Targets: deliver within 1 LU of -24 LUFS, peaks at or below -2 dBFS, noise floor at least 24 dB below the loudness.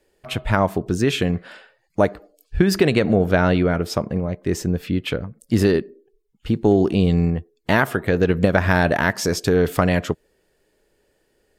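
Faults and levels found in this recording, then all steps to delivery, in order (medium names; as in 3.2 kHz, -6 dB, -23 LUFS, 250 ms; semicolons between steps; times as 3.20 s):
loudness -20.0 LUFS; peak level -2.0 dBFS; loudness target -24.0 LUFS
-> trim -4 dB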